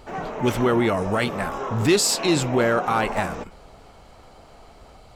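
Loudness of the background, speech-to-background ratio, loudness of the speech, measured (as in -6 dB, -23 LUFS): -31.0 LUFS, 8.5 dB, -22.5 LUFS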